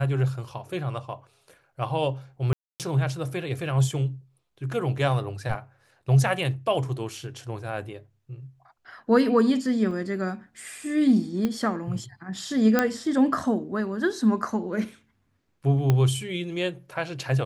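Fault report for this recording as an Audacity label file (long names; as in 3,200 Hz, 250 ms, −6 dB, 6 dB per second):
2.530000	2.800000	drop-out 268 ms
9.910000	9.910000	drop-out 2.1 ms
11.450000	11.450000	click −14 dBFS
12.790000	12.790000	click −7 dBFS
15.900000	15.900000	click −10 dBFS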